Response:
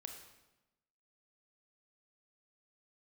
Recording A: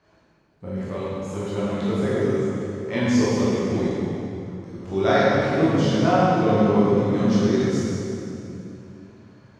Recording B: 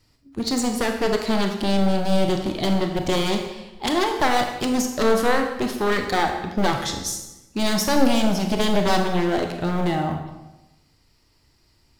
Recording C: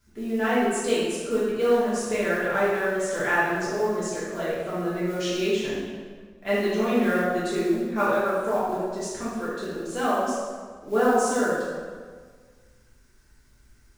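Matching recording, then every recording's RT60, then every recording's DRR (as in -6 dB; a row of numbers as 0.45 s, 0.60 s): B; 2.8 s, 1.0 s, 1.6 s; -9.5 dB, 3.5 dB, -11.0 dB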